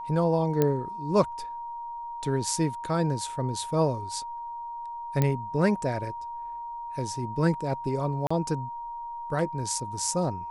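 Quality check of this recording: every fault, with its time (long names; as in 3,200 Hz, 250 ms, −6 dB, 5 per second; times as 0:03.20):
whistle 940 Hz −34 dBFS
0:00.62: click −11 dBFS
0:05.22: click −11 dBFS
0:08.27–0:08.30: drop-out 35 ms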